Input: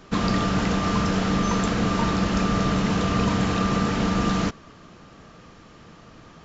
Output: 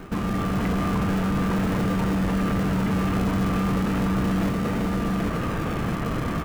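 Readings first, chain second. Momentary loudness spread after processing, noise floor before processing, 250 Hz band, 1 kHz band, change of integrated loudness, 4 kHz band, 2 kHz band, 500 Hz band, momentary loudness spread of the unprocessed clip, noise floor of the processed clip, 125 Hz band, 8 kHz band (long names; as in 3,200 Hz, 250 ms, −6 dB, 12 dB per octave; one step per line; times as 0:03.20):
3 LU, −49 dBFS, +0.5 dB, −2.5 dB, −1.5 dB, −6.5 dB, −2.0 dB, −1.0 dB, 1 LU, −27 dBFS, +1.0 dB, can't be measured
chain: Butterworth band-reject 5,500 Hz, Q 0.73
automatic gain control gain up to 14 dB
single-tap delay 789 ms −5 dB
pitch vibrato 3.9 Hz 17 cents
in parallel at −4 dB: sample-and-hold swept by an LFO 37×, swing 60% 0.37 Hz
on the sum: soft clipping −5.5 dBFS, distortion −14 dB
reversed playback
downward compressor, threshold −24 dBFS, peak gain reduction 14.5 dB
reversed playback
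brickwall limiter −27.5 dBFS, peak gain reduction 11 dB
level +9 dB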